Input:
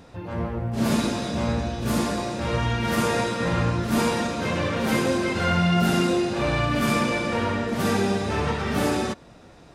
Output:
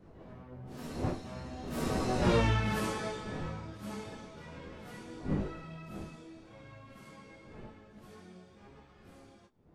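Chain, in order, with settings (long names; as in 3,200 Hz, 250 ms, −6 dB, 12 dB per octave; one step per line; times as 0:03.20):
wind on the microphone 360 Hz −23 dBFS
source passing by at 0:02.32, 28 m/s, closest 5.4 metres
micro pitch shift up and down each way 13 cents
level +1.5 dB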